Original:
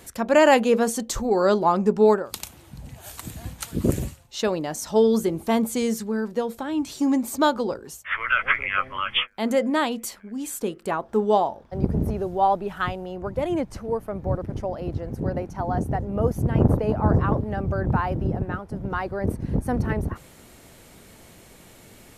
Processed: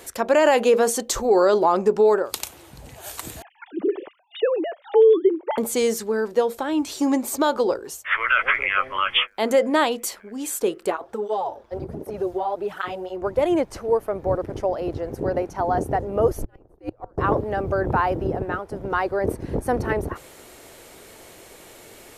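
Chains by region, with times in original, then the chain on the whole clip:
3.42–5.58 s: formants replaced by sine waves + dynamic bell 2.5 kHz, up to -7 dB, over -40 dBFS, Q 0.7
10.90–13.22 s: compression 4:1, threshold -24 dBFS + cancelling through-zero flanger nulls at 1.3 Hz, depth 7.8 ms
16.28–17.18 s: inverted gate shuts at -13 dBFS, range -34 dB + frequency shift -120 Hz
whole clip: resonant low shelf 280 Hz -8 dB, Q 1.5; loudness maximiser +12 dB; trim -7.5 dB

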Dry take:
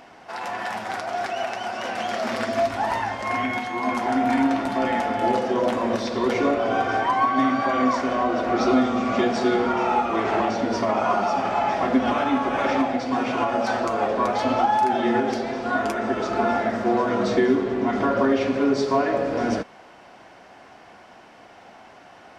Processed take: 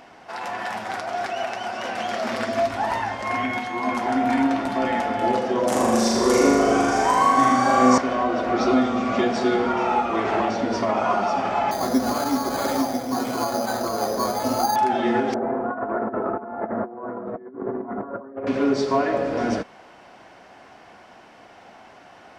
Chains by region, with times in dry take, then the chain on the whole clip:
5.67–7.98 s: resonant high shelf 5.1 kHz +13.5 dB, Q 1.5 + flutter echo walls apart 6.8 m, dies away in 1.2 s
11.71–14.76 s: distance through air 440 m + careless resampling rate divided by 8×, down filtered, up hold
15.34–18.47 s: low-pass 1.3 kHz 24 dB/octave + compressor with a negative ratio -27 dBFS, ratio -0.5 + bass shelf 120 Hz -10 dB
whole clip: none

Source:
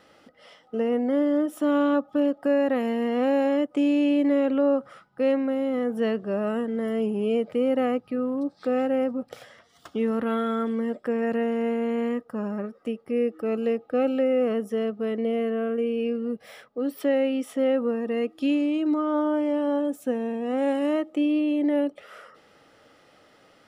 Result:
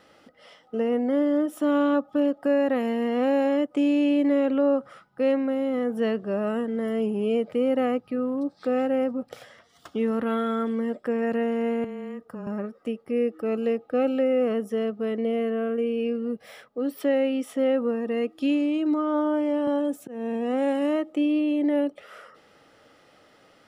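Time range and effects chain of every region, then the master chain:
11.84–12.47 s: frequency shift -14 Hz + compression 4:1, threshold -33 dBFS
19.67–21.13 s: slow attack 285 ms + three bands compressed up and down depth 40%
whole clip: none

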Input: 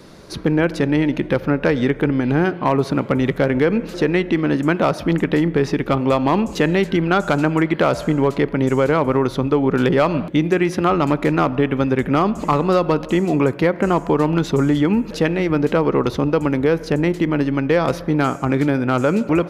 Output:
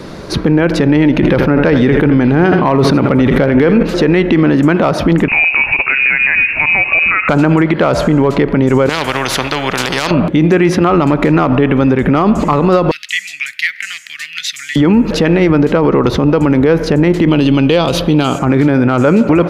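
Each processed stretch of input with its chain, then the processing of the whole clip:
1.16–3.83 s: band-stop 7.1 kHz, Q 8.3 + delay 81 ms -13 dB + decay stretcher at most 63 dB/s
5.28–7.29 s: compression 4:1, threshold -21 dBFS + frequency inversion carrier 2.7 kHz
8.89–10.11 s: high-pass 170 Hz 6 dB/octave + spectrum-flattening compressor 4:1
12.91–14.76 s: elliptic high-pass 1.9 kHz, stop band 50 dB + treble shelf 4.1 kHz +5.5 dB
17.28–18.39 s: resonant high shelf 2.4 kHz +7 dB, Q 3 + band-stop 5.4 kHz, Q 7
whole clip: treble shelf 5.5 kHz -9 dB; loudness maximiser +15.5 dB; trim -1 dB

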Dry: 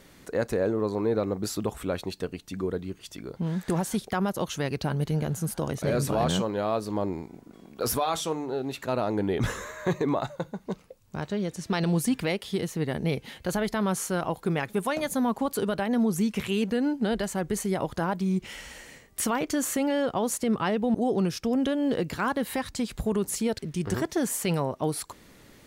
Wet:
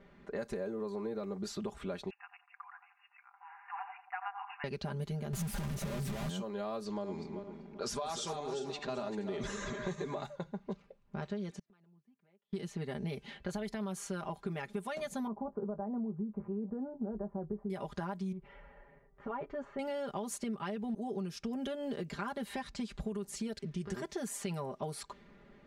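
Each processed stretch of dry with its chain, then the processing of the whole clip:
2.10–4.64 s: brick-wall FIR band-pass 710–2900 Hz + feedback echo behind a low-pass 90 ms, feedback 32%, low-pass 920 Hz, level -4.5 dB
5.33–6.30 s: one-bit comparator + tone controls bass +11 dB, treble -2 dB
6.85–10.24 s: backward echo that repeats 194 ms, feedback 50%, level -7.5 dB + low-pass 7.4 kHz 24 dB/octave + treble shelf 4.6 kHz +9 dB
11.50–12.53 s: high-pass 120 Hz 24 dB/octave + inverted gate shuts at -29 dBFS, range -37 dB
15.27–17.70 s: inverse Chebyshev low-pass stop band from 3.4 kHz, stop band 60 dB + doubling 19 ms -12 dB
18.32–19.79 s: low-pass 1 kHz + peaking EQ 240 Hz -8.5 dB 1.7 oct + comb 7.2 ms, depth 57%
whole clip: level-controlled noise filter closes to 1.8 kHz, open at -22 dBFS; comb 5 ms, depth 80%; compression, threshold -28 dBFS; trim -7 dB

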